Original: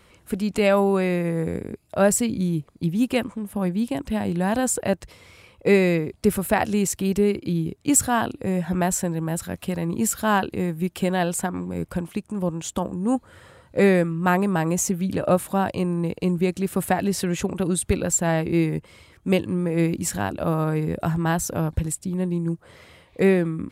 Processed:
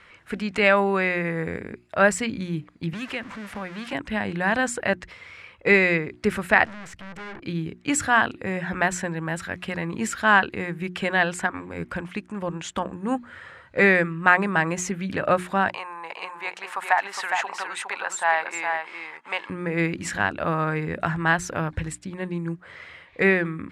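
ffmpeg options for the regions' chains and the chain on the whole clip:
-filter_complex "[0:a]asettb=1/sr,asplit=3[a][b][c];[a]atrim=end=2.934[d];[b]atrim=start=2.93:end=3.93,asetpts=PTS-STARTPTS,afade=t=in:d=0.004:c=qsin,afade=t=out:st=0.996:d=0.004:c=qsin,aeval=exprs='val(0)+0.5*0.0251*sgn(val(0))':c=same,acrossover=split=330|680[e][f][g];[e]acompressor=threshold=-34dB:ratio=4[h];[f]acompressor=threshold=-38dB:ratio=4[i];[g]acompressor=threshold=-37dB:ratio=4[j];[h][i][j]amix=inputs=3:normalize=0[k];[c]atrim=start=3.926[l];[d][k]acrossfade=d=0.004:c1=hsin:c2=qsin[m];[m][l]acrossfade=d=0.004:c1=qsin:c2=hsin,asettb=1/sr,asplit=3[n][o][p];[n]atrim=end=6.654[q];[o]atrim=start=6.65:end=7.43,asetpts=PTS-STARTPTS,afade=t=in:d=0.004:c=qsin,afade=t=out:st=0.776:d=0.004:c=qsin,tiltshelf=f=690:g=5,aeval=exprs='(tanh(63.1*val(0)+0.65)-tanh(0.65))/63.1':c=same[r];[p]atrim=start=7.426[s];[q][r]acrossfade=d=0.004:c1=hsin:c2=qsin[t];[t][s]acrossfade=d=0.004:c1=qsin:c2=hsin,asettb=1/sr,asplit=3[u][v][w];[u]atrim=end=15.694[x];[v]atrim=start=15.69:end=19.5,asetpts=PTS-STARTPTS,afade=t=in:d=0.004:c=qsin,afade=t=out:st=3.806:d=0.004:c=qsin,acompressor=threshold=-28dB:ratio=1.5:attack=3.2:release=140:knee=1:detection=peak,highpass=f=880:t=q:w=4.1,aecho=1:1:411:0.531,atrim=end_sample=168021[y];[w]atrim=start=19.496[z];[x][y]acrossfade=d=0.004:c1=hsin:c2=qsin[aa];[aa][z]acrossfade=d=0.004:c1=qsin:c2=hsin,lowpass=7k,equalizer=f=1.8k:w=0.84:g=15,bandreject=f=60:t=h:w=6,bandreject=f=120:t=h:w=6,bandreject=f=180:t=h:w=6,bandreject=f=240:t=h:w=6,bandreject=f=300:t=h:w=6,bandreject=f=360:t=h:w=6,volume=-4.5dB"

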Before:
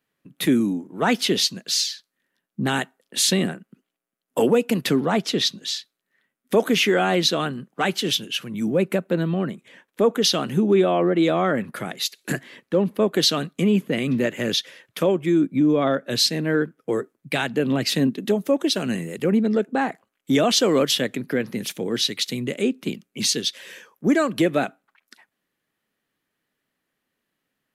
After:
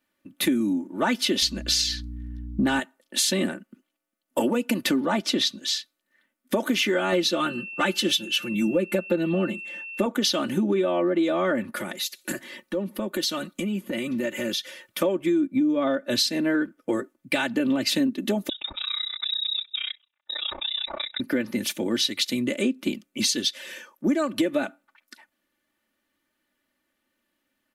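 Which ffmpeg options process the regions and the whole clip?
-filter_complex "[0:a]asettb=1/sr,asplit=3[a][b][c];[a]atrim=end=1.424[d];[b]atrim=start=1.42:end=2.8,asetpts=PTS-STARTPTS,afade=t=in:d=0.004:c=qsin,afade=t=out:st=1.376:d=0.004:c=qsin,highshelf=f=5.4k:g=-7.5,aeval=exprs='val(0)+0.00794*(sin(2*PI*60*n/s)+sin(2*PI*2*60*n/s)/2+sin(2*PI*3*60*n/s)/3+sin(2*PI*4*60*n/s)/4+sin(2*PI*5*60*n/s)/5)':c=same,acontrast=61[e];[c]atrim=start=2.796[f];[d][e]acrossfade=d=0.004:c1=hsin:c2=qsin[g];[g][f]acrossfade=d=0.004:c1=qsin:c2=hsin,asettb=1/sr,asplit=3[h][i][j];[h]atrim=end=7.124[k];[i]atrim=start=7.12:end=10.06,asetpts=PTS-STARTPTS,afade=t=in:d=0.004:c=qsin,afade=t=out:st=2.936:d=0.004:c=qsin,aecho=1:1:5.7:0.73,atrim=end_sample=129654,aeval=exprs='val(0)+0.0112*sin(2*PI*2700*n/s)':c=same[l];[j]atrim=start=10.056[m];[k][l]acrossfade=d=0.004:c1=hsin:c2=qsin[n];[n][m]acrossfade=d=0.004:c1=qsin:c2=hsin,asettb=1/sr,asplit=3[o][p][q];[o]atrim=end=11.774[r];[p]atrim=start=11.77:end=15,asetpts=PTS-STARTPTS,afade=t=in:d=0.004:c=qsin,afade=t=out:st=3.226:d=0.004:c=qsin,highshelf=f=9k:g=8,aecho=1:1:5.5:0.41,atrim=end_sample=142443,acompressor=threshold=-30dB:ratio=2.5:attack=3.2:release=140:knee=1:detection=peak[s];[q]atrim=start=14.996[t];[r][s]acrossfade=d=0.004:c1=hsin:c2=qsin[u];[u][t]acrossfade=d=0.004:c1=qsin:c2=hsin,asettb=1/sr,asplit=3[v][w][x];[v]atrim=end=18.494[y];[w]atrim=start=18.49:end=21.2,asetpts=PTS-STARTPTS,afade=t=in:d=0.004:c=qsin,afade=t=out:st=2.706:d=0.004:c=qsin,acompressor=threshold=-23dB:ratio=12:attack=3.2:release=140:knee=1:detection=peak,lowpass=f=3.4k:t=q:w=0.5098,lowpass=f=3.4k:t=q:w=0.6013,lowpass=f=3.4k:t=q:w=0.9,lowpass=f=3.4k:t=q:w=2.563,afreqshift=-4000,tremolo=f=31:d=0.974[z];[x]atrim=start=21.196[aa];[y][z]acrossfade=d=0.004:c1=hsin:c2=qsin[ab];[ab][aa]acrossfade=d=0.004:c1=qsin:c2=hsin,aecho=1:1:3.4:0.77,acompressor=threshold=-20dB:ratio=6"

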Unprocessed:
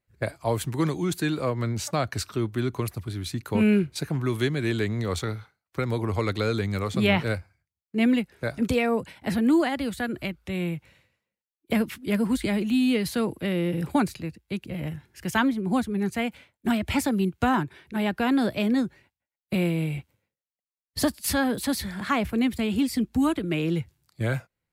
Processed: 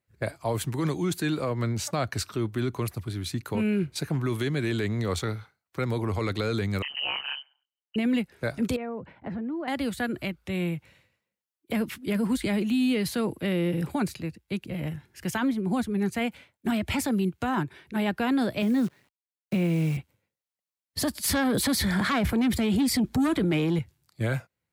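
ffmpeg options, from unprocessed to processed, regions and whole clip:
-filter_complex "[0:a]asettb=1/sr,asplit=3[a][b][c];[a]atrim=end=6.824[d];[b]atrim=start=6.82:end=7.96,asetpts=PTS-STARTPTS,afade=t=in:d=0.004:c=qsin,afade=t=out:st=1.136:d=0.004:c=qsin,lowpass=f=2.6k:t=q:w=0.5098,lowpass=f=2.6k:t=q:w=0.6013,lowpass=f=2.6k:t=q:w=0.9,lowpass=f=2.6k:t=q:w=2.563,afreqshift=-3100,acompressor=threshold=-31dB:ratio=1.5:attack=3.2:release=140:knee=1:detection=peak,tremolo=f=140:d=0.919[e];[c]atrim=start=7.956[f];[d][e]acrossfade=d=0.004:c1=hsin:c2=qsin[g];[g][f]acrossfade=d=0.004:c1=qsin:c2=hsin,asettb=1/sr,asplit=3[h][i][j];[h]atrim=end=8.764[k];[i]atrim=start=8.76:end=9.68,asetpts=PTS-STARTPTS,afade=t=in:d=0.004:c=qsin,afade=t=out:st=0.916:d=0.004:c=qsin,lowpass=1.4k,acompressor=threshold=-31dB:ratio=5:attack=3.2:release=140:knee=1:detection=peak[l];[j]atrim=start=9.676[m];[k][l]acrossfade=d=0.004:c1=hsin:c2=qsin[n];[n][m]acrossfade=d=0.004:c1=qsin:c2=hsin,asettb=1/sr,asplit=3[o][p][q];[o]atrim=end=18.624[r];[p]atrim=start=18.62:end=19.97,asetpts=PTS-STARTPTS,afade=t=in:d=0.004:c=qsin,afade=t=out:st=1.346:d=0.004:c=qsin,highpass=150,bass=f=250:g=7,treble=f=4k:g=-8,acrusher=bits=8:dc=4:mix=0:aa=0.000001[s];[q]atrim=start=19.966[t];[r][s]acrossfade=d=0.004:c1=hsin:c2=qsin[u];[u][t]acrossfade=d=0.004:c1=qsin:c2=hsin,asettb=1/sr,asplit=3[v][w][x];[v]atrim=end=21.154[y];[w]atrim=start=21.15:end=23.79,asetpts=PTS-STARTPTS,afade=t=in:d=0.004:c=qsin,afade=t=out:st=2.636:d=0.004:c=qsin,highshelf=f=6.9k:g=-3,bandreject=f=2.7k:w=10,aeval=exprs='0.299*sin(PI/2*2.24*val(0)/0.299)':c=same[z];[x]atrim=start=23.786[aa];[y][z]acrossfade=d=0.004:c1=hsin:c2=qsin[ab];[ab][aa]acrossfade=d=0.004:c1=qsin:c2=hsin,highpass=61,alimiter=limit=-18.5dB:level=0:latency=1:release=14"

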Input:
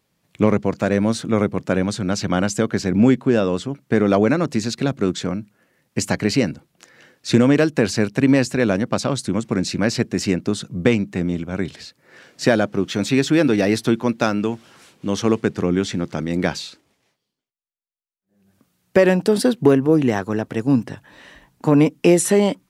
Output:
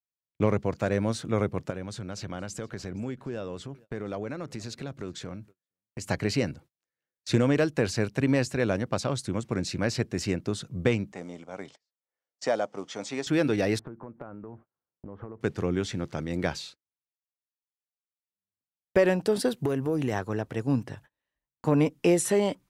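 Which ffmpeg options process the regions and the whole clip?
-filter_complex "[0:a]asettb=1/sr,asplit=3[a][b][c];[a]atrim=end=1.704[d];[b]atrim=start=1.7:end=6.09,asetpts=PTS-STARTPTS,afade=t=in:d=0.004:c=qsin,afade=t=out:st=4.386:d=0.004:c=qsin,acompressor=threshold=-30dB:ratio=2:attack=3.2:release=140:knee=1:detection=peak,aecho=1:1:469:0.0631,atrim=end_sample=193599[e];[c]atrim=start=6.086[f];[d][e]acrossfade=d=0.004:c1=hsin:c2=qsin[g];[g][f]acrossfade=d=0.004:c1=qsin:c2=hsin,asettb=1/sr,asplit=3[h][i][j];[h]atrim=end=11.124[k];[i]atrim=start=11.12:end=13.27,asetpts=PTS-STARTPTS,afade=t=in:d=0.004:c=qsin,afade=t=out:st=2.146:d=0.004:c=qsin,acrusher=bits=8:mode=log:mix=0:aa=0.000001,highpass=350,equalizer=f=360:t=q:w=4:g=-8,equalizer=f=790:t=q:w=4:g=3,equalizer=f=1.6k:t=q:w=4:g=-8,equalizer=f=2.6k:t=q:w=4:g=-8,equalizer=f=4k:t=q:w=4:g=-8,lowpass=f=7.9k:w=0.5412,lowpass=f=7.9k:w=1.3066[l];[j]atrim=start=13.266[m];[k][l]acrossfade=d=0.004:c1=hsin:c2=qsin[n];[n][m]acrossfade=d=0.004:c1=qsin:c2=hsin,asettb=1/sr,asplit=3[o][p][q];[o]atrim=end=13.794[r];[p]atrim=start=13.79:end=15.41,asetpts=PTS-STARTPTS,afade=t=in:d=0.004:c=qsin,afade=t=out:st=1.616:d=0.004:c=qsin,lowpass=f=1.4k:w=0.5412,lowpass=f=1.4k:w=1.3066,acompressor=threshold=-29dB:ratio=8:attack=3.2:release=140:knee=1:detection=peak[s];[q]atrim=start=15.406[t];[r][s]acrossfade=d=0.004:c1=hsin:c2=qsin[u];[u][t]acrossfade=d=0.004:c1=qsin:c2=hsin,asettb=1/sr,asplit=3[v][w][x];[v]atrim=end=19.484[y];[w]atrim=start=19.48:end=20.13,asetpts=PTS-STARTPTS,afade=t=in:d=0.004:c=qsin,afade=t=out:st=0.646:d=0.004:c=qsin,highshelf=f=6.8k:g=9.5,acompressor=threshold=-14dB:ratio=5:attack=3.2:release=140:knee=1:detection=peak[z];[x]atrim=start=20.126[aa];[y][z]acrossfade=d=0.004:c1=hsin:c2=qsin[ab];[ab][aa]acrossfade=d=0.004:c1=qsin:c2=hsin,lowshelf=f=480:g=8.5,agate=range=-36dB:threshold=-35dB:ratio=16:detection=peak,equalizer=f=220:t=o:w=1.6:g=-10,volume=-8dB"

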